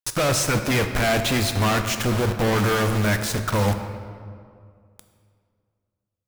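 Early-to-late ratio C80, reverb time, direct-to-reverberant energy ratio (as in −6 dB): 9.0 dB, 2.2 s, 6.5 dB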